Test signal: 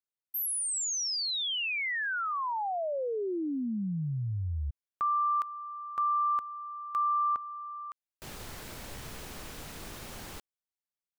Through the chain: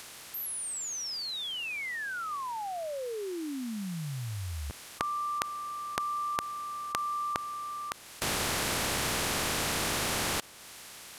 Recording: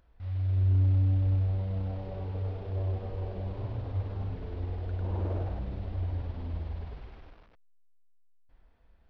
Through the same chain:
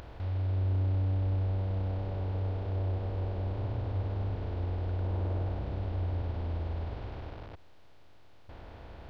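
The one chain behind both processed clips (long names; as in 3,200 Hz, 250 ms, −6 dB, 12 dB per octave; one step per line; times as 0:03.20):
compressor on every frequency bin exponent 0.4
one half of a high-frequency compander encoder only
level −5.5 dB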